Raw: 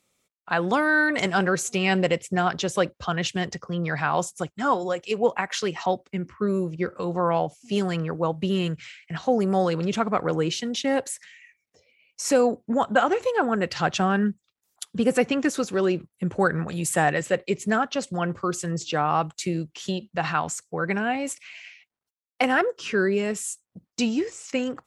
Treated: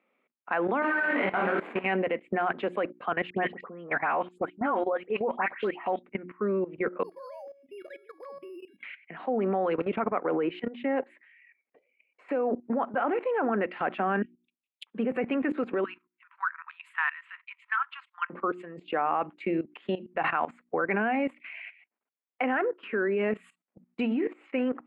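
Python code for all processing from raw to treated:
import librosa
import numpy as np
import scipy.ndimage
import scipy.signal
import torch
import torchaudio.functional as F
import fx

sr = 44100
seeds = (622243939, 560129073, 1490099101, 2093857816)

y = fx.chain(x, sr, fx.delta_hold(step_db=-22.5),
    fx.doubler(ms=48.0, db=-4),
    fx.detune_double(cents=20), at=(0.82, 1.86))
y = fx.chain(y, sr, fx.high_shelf(hz=6200.0, db=-5.5),
    fx.dispersion(late='highs', ms=94.0, hz=2300.0), at=(3.3, 6.03))
y = fx.chain(y, sr, fx.sine_speech(),
    fx.resample_bad(factor=8, down='filtered', up='zero_stuff'),
    fx.comb_fb(f0_hz=560.0, decay_s=0.4, harmonics='all', damping=0.0, mix_pct=90), at=(7.03, 8.83))
y = fx.chain(y, sr, fx.lowpass(hz=3100.0, slope=6),
    fx.peak_eq(hz=210.0, db=-4.5, octaves=0.32), at=(9.89, 13.1))
y = fx.chain(y, sr, fx.steep_highpass(hz=2500.0, slope=48),
    fx.transient(attack_db=8, sustain_db=-1), at=(14.22, 14.87))
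y = fx.chain(y, sr, fx.cheby_ripple_highpass(hz=950.0, ripple_db=3),
    fx.tremolo(hz=3.3, depth=0.38), at=(15.84, 18.3))
y = scipy.signal.sosfilt(scipy.signal.ellip(3, 1.0, 40, [230.0, 2400.0], 'bandpass', fs=sr, output='sos'), y)
y = fx.hum_notches(y, sr, base_hz=60, count=6)
y = fx.level_steps(y, sr, step_db=16)
y = y * librosa.db_to_amplitude(5.5)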